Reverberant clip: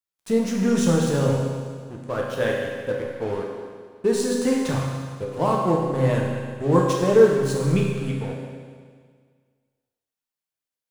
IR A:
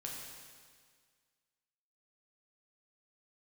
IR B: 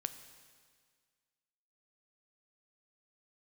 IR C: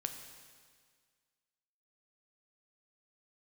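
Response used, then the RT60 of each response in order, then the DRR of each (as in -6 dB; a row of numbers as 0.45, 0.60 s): A; 1.8, 1.8, 1.8 s; -2.5, 9.5, 5.5 dB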